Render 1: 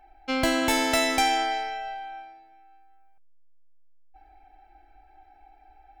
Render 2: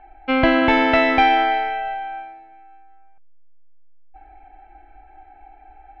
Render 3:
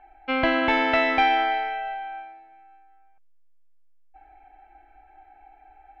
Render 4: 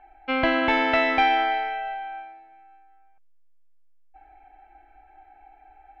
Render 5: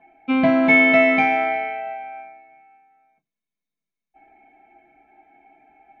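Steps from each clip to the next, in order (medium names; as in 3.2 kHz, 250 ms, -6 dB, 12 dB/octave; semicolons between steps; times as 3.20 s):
low-pass 2.8 kHz 24 dB/octave; trim +8.5 dB
bass shelf 400 Hz -7 dB; trim -3.5 dB
no audible change
reverberation RT60 0.15 s, pre-delay 3 ms, DRR -5 dB; trim -7.5 dB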